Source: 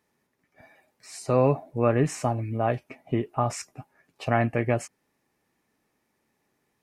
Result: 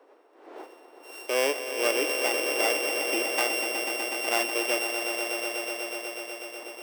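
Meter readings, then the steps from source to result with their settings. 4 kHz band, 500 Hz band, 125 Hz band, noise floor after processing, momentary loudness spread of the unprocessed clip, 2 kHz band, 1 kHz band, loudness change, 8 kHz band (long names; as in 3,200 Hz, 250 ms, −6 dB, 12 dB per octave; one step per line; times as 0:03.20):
+17.0 dB, −1.5 dB, below −40 dB, −56 dBFS, 15 LU, +9.5 dB, −2.5 dB, −0.5 dB, +9.0 dB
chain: samples sorted by size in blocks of 16 samples
wind on the microphone 560 Hz −43 dBFS
Butterworth high-pass 310 Hz 48 dB per octave
on a send: echo that builds up and dies away 123 ms, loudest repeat 5, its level −10 dB
on the sum: level −3.5 dB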